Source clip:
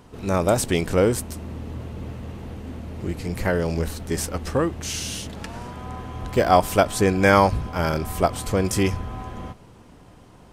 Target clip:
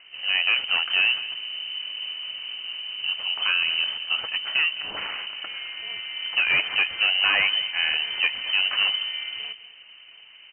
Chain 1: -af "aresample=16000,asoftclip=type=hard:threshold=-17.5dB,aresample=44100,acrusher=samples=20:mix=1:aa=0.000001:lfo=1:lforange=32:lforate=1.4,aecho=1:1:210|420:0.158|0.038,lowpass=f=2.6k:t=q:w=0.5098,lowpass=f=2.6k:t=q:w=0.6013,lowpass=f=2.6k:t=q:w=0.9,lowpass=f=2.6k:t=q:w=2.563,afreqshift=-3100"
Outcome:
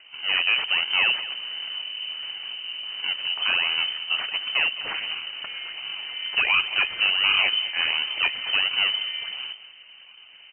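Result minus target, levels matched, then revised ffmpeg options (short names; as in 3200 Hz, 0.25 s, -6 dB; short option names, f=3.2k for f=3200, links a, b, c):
decimation with a swept rate: distortion +7 dB
-af "aresample=16000,asoftclip=type=hard:threshold=-17.5dB,aresample=44100,acrusher=samples=7:mix=1:aa=0.000001:lfo=1:lforange=11.2:lforate=1.4,aecho=1:1:210|420:0.158|0.038,lowpass=f=2.6k:t=q:w=0.5098,lowpass=f=2.6k:t=q:w=0.6013,lowpass=f=2.6k:t=q:w=0.9,lowpass=f=2.6k:t=q:w=2.563,afreqshift=-3100"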